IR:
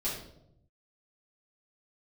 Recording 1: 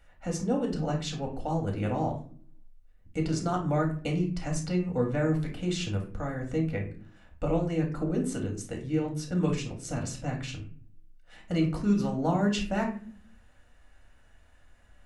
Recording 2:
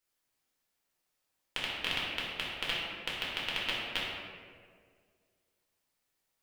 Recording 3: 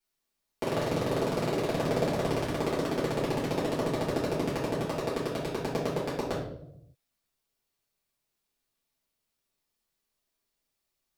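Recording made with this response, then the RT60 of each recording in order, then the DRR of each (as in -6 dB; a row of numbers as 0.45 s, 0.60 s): 3; no single decay rate, 1.9 s, 0.80 s; 0.0 dB, -6.5 dB, -9.5 dB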